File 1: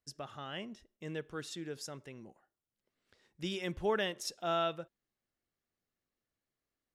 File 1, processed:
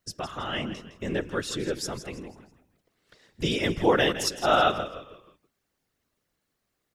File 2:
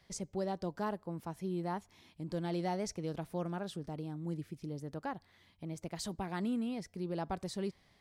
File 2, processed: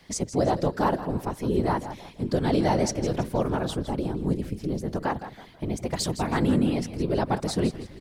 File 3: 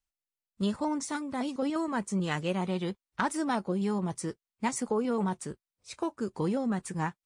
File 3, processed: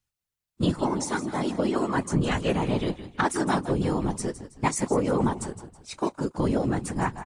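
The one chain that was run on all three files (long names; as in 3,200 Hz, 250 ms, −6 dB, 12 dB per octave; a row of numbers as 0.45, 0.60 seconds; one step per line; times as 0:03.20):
echo with shifted repeats 162 ms, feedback 38%, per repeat −42 Hz, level −12.5 dB
random phases in short frames
loudness normalisation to −27 LKFS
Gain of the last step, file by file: +11.0, +12.5, +5.0 decibels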